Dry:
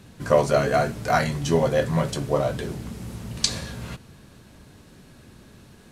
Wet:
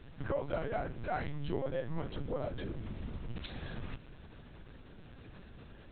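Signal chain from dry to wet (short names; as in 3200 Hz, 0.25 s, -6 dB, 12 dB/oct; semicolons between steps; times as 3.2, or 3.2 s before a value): dynamic EQ 120 Hz, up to +5 dB, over -38 dBFS, Q 1.4; compressor 2.5:1, threshold -36 dBFS, peak gain reduction 15.5 dB; LPC vocoder at 8 kHz pitch kept; gain -3 dB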